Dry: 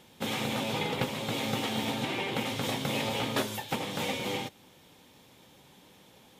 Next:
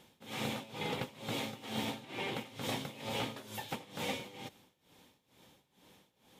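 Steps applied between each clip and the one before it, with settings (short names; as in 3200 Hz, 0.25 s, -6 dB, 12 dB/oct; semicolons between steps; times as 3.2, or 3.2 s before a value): tremolo 2.2 Hz, depth 87%; gain -4 dB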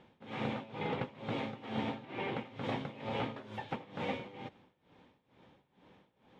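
LPF 2100 Hz 12 dB/oct; gain +2 dB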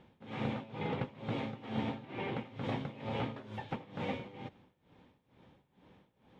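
low shelf 190 Hz +7.5 dB; gain -2 dB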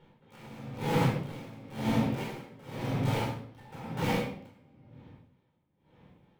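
in parallel at -3 dB: bit-crush 6-bit; on the sum: shoebox room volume 880 m³, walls mixed, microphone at 4.5 m; dB-linear tremolo 0.98 Hz, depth 20 dB; gain -4.5 dB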